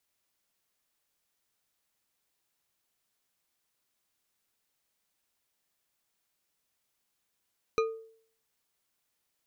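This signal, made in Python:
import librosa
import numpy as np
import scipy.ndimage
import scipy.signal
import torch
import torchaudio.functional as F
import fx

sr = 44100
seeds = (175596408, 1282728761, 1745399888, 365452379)

y = fx.strike_glass(sr, length_s=0.89, level_db=-22.0, body='bar', hz=448.0, decay_s=0.57, tilt_db=5.0, modes=5)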